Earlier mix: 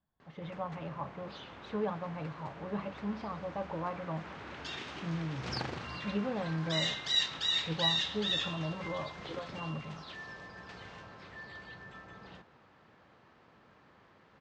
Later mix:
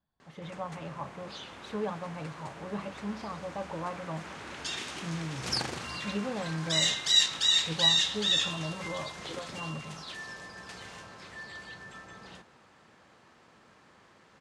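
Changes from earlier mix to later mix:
background: send +10.0 dB; master: remove air absorption 170 m

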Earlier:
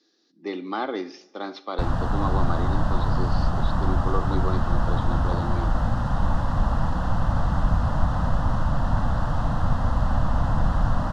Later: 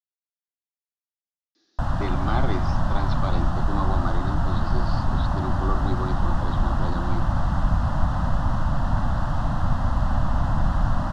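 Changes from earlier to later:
speech: entry +1.55 s; master: add bell 470 Hz -11 dB 0.22 oct

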